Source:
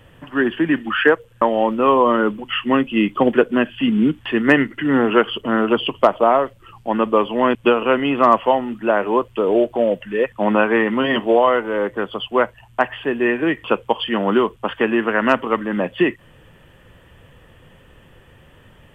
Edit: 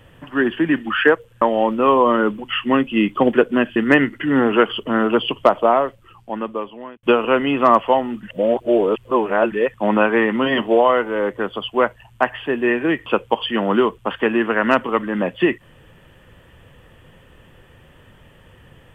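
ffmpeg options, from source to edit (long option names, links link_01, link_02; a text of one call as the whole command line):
ffmpeg -i in.wav -filter_complex "[0:a]asplit=5[link_01][link_02][link_03][link_04][link_05];[link_01]atrim=end=3.762[link_06];[link_02]atrim=start=4.338:end=7.61,asetpts=PTS-STARTPTS,afade=type=out:start_time=1.862:duration=1.41[link_07];[link_03]atrim=start=7.61:end=8.812,asetpts=PTS-STARTPTS,afade=type=in:duration=0.004:curve=hsin[link_08];[link_04]atrim=start=8.808:end=10.102,asetpts=PTS-STARTPTS,areverse[link_09];[link_05]atrim=start=10.098[link_10];[link_07][link_08]concat=n=2:v=0:a=1[link_11];[link_06][link_11]acrossfade=duration=0.004:curve1=hsin:curve2=hsin[link_12];[link_12][link_09]acrossfade=duration=0.004:curve1=hsin:curve2=hsin[link_13];[link_13][link_10]acrossfade=duration=0.004:curve1=hsin:curve2=hsin" out.wav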